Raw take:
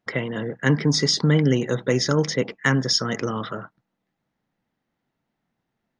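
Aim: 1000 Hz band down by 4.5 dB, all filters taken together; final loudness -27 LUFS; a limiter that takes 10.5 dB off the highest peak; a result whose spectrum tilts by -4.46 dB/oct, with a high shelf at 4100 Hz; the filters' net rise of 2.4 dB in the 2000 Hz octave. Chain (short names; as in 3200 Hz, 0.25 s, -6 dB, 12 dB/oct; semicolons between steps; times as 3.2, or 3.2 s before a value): bell 1000 Hz -8.5 dB; bell 2000 Hz +4.5 dB; high shelf 4100 Hz +4 dB; gain -2.5 dB; limiter -16.5 dBFS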